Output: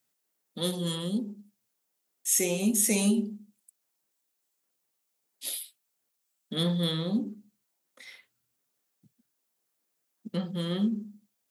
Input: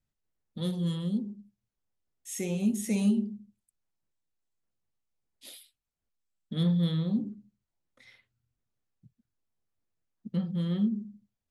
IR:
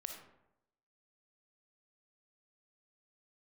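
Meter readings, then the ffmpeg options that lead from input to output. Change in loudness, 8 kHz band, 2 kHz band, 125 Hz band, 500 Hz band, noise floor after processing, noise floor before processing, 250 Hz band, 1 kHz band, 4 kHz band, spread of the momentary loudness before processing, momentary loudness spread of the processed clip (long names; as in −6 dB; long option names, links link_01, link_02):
+1.5 dB, +14.0 dB, +8.0 dB, −3.0 dB, +6.0 dB, −80 dBFS, below −85 dBFS, −0.5 dB, +7.0 dB, +9.5 dB, 22 LU, 16 LU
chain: -af "highpass=300,highshelf=frequency=6600:gain=11.5,volume=7dB"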